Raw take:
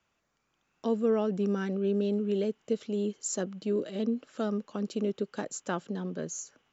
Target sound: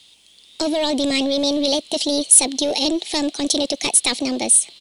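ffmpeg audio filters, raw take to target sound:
ffmpeg -i in.wav -filter_complex "[0:a]apsyclip=27.5dB,asplit=2[link_01][link_02];[link_02]asoftclip=type=hard:threshold=-10.5dB,volume=-11.5dB[link_03];[link_01][link_03]amix=inputs=2:normalize=0,asetrate=61740,aresample=44100,highshelf=frequency=2300:width_type=q:width=3:gain=12.5,volume=-16dB" out.wav

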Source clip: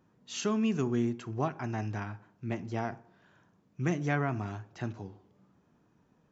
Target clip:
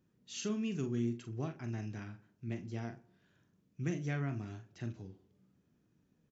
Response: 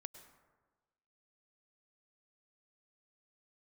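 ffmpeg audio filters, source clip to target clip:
-filter_complex "[0:a]equalizer=frequency=920:width_type=o:width=1.5:gain=-12.5,asplit=2[link_01][link_02];[link_02]adelay=43,volume=-9dB[link_03];[link_01][link_03]amix=inputs=2:normalize=0,volume=-4.5dB"

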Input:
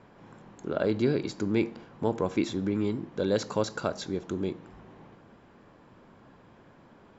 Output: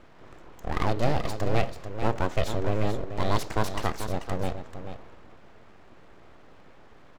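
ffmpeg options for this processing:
ffmpeg -i in.wav -filter_complex "[0:a]bass=frequency=250:gain=3,treble=frequency=4000:gain=-1,aeval=exprs='abs(val(0))':channel_layout=same,asplit=2[link_01][link_02];[link_02]aecho=0:1:438:0.335[link_03];[link_01][link_03]amix=inputs=2:normalize=0,volume=3dB" out.wav

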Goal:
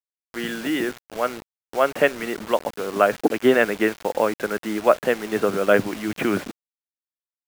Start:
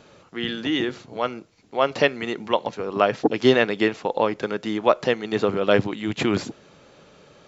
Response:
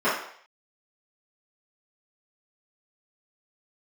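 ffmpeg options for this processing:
-af "highpass=frequency=110:width=0.5412,highpass=frequency=110:width=1.3066,equalizer=frequency=130:width_type=q:width=4:gain=-8,equalizer=frequency=620:width_type=q:width=4:gain=3,equalizer=frequency=930:width_type=q:width=4:gain=-3,equalizer=frequency=1500:width_type=q:width=4:gain=6,lowpass=frequency=2700:width=0.5412,lowpass=frequency=2700:width=1.3066,acrusher=bits=5:mix=0:aa=0.000001,acompressor=mode=upward:threshold=-38dB:ratio=2.5"

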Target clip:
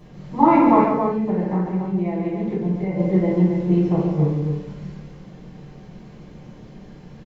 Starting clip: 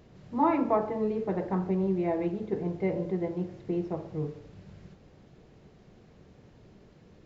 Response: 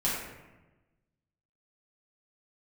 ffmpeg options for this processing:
-filter_complex "[0:a]asplit=3[link_01][link_02][link_03];[link_01]afade=type=out:start_time=0.82:duration=0.02[link_04];[link_02]acompressor=threshold=-34dB:ratio=6,afade=type=in:start_time=0.82:duration=0.02,afade=type=out:start_time=2.96:duration=0.02[link_05];[link_03]afade=type=in:start_time=2.96:duration=0.02[link_06];[link_04][link_05][link_06]amix=inputs=3:normalize=0,aecho=1:1:139.9|274.1:0.501|0.501[link_07];[1:a]atrim=start_sample=2205,atrim=end_sample=3969[link_08];[link_07][link_08]afir=irnorm=-1:irlink=0,volume=2.5dB"

